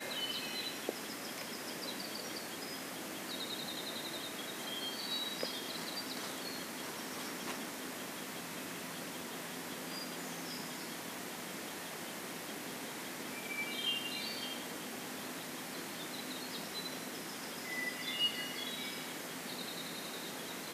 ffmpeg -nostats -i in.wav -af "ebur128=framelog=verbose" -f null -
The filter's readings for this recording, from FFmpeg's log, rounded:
Integrated loudness:
  I:         -40.1 LUFS
  Threshold: -50.1 LUFS
Loudness range:
  LRA:         3.6 LU
  Threshold: -60.2 LUFS
  LRA low:   -42.1 LUFS
  LRA high:  -38.4 LUFS